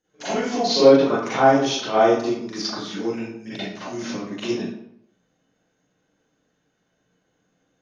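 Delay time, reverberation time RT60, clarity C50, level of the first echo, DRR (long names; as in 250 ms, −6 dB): no echo audible, 0.70 s, −3.5 dB, no echo audible, −12.5 dB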